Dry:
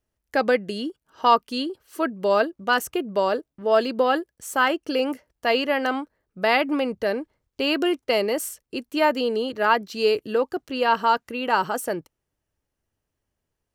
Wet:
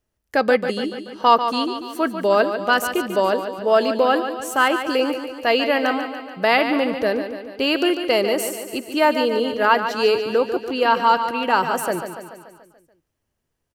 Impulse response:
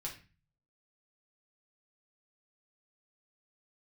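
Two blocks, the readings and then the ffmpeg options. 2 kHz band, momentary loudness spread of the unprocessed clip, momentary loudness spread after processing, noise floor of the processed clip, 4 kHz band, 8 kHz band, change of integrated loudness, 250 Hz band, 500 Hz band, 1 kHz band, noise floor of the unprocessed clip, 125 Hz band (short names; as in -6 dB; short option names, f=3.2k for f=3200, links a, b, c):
+3.5 dB, 9 LU, 9 LU, -76 dBFS, +4.0 dB, +3.5 dB, +3.5 dB, +3.5 dB, +3.5 dB, +3.5 dB, -82 dBFS, n/a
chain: -filter_complex "[0:a]aecho=1:1:144|288|432|576|720|864|1008:0.355|0.206|0.119|0.0692|0.0402|0.0233|0.0135,asplit=2[a][b];[1:a]atrim=start_sample=2205[c];[b][c]afir=irnorm=-1:irlink=0,volume=-21dB[d];[a][d]amix=inputs=2:normalize=0,volume=2.5dB"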